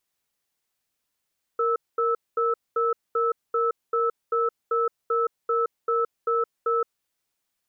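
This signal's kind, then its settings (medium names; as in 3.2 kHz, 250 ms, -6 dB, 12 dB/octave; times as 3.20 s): cadence 464 Hz, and 1.31 kHz, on 0.17 s, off 0.22 s, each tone -23 dBFS 5.30 s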